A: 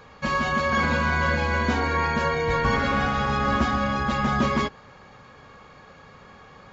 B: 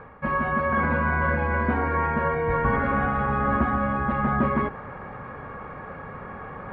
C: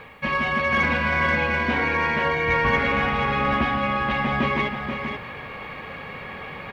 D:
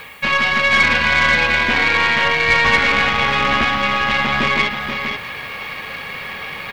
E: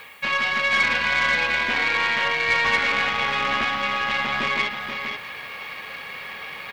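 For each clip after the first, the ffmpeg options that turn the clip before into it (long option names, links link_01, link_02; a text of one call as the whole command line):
ffmpeg -i in.wav -af "lowpass=frequency=1900:width=0.5412,lowpass=frequency=1900:width=1.3066,areverse,acompressor=mode=upward:threshold=-26dB:ratio=2.5,areverse" out.wav
ffmpeg -i in.wav -af "aexciter=amount=5.5:drive=9.3:freq=2200,lowshelf=frequency=120:gain=-4,aecho=1:1:482:0.447" out.wav
ffmpeg -i in.wav -filter_complex "[0:a]aeval=exprs='0.376*(cos(1*acos(clip(val(0)/0.376,-1,1)))-cos(1*PI/2))+0.0422*(cos(6*acos(clip(val(0)/0.376,-1,1)))-cos(6*PI/2))':channel_layout=same,crystalizer=i=8.5:c=0,acrossover=split=4000[link_01][link_02];[link_02]acompressor=threshold=-39dB:ratio=4:attack=1:release=60[link_03];[link_01][link_03]amix=inputs=2:normalize=0" out.wav
ffmpeg -i in.wav -af "lowshelf=frequency=230:gain=-9,volume=-6dB" out.wav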